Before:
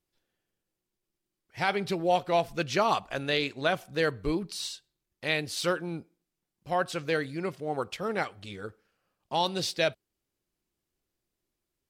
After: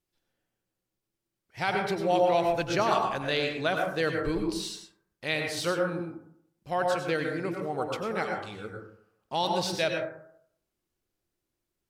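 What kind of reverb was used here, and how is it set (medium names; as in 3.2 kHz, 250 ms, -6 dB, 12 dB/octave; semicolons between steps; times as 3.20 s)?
plate-style reverb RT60 0.66 s, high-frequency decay 0.3×, pre-delay 85 ms, DRR 2 dB; trim -1.5 dB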